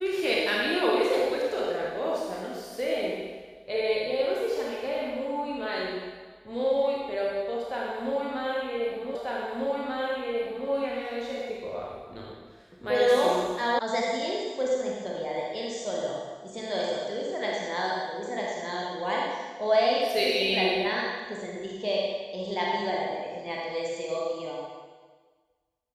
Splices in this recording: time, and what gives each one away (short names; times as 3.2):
9.15 repeat of the last 1.54 s
13.79 sound cut off